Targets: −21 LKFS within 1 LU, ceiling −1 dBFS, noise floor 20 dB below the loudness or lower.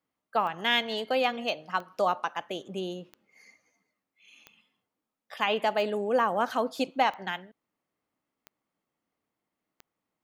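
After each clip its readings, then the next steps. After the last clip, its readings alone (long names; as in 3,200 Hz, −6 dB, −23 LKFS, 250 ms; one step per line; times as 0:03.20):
number of clicks 8; integrated loudness −29.0 LKFS; sample peak −11.0 dBFS; target loudness −21.0 LKFS
→ click removal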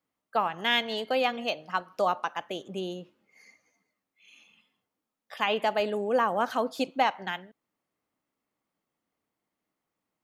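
number of clicks 0; integrated loudness −29.0 LKFS; sample peak −11.0 dBFS; target loudness −21.0 LKFS
→ level +8 dB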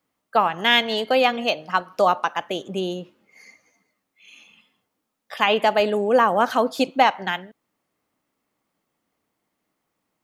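integrated loudness −21.0 LKFS; sample peak −3.0 dBFS; background noise floor −78 dBFS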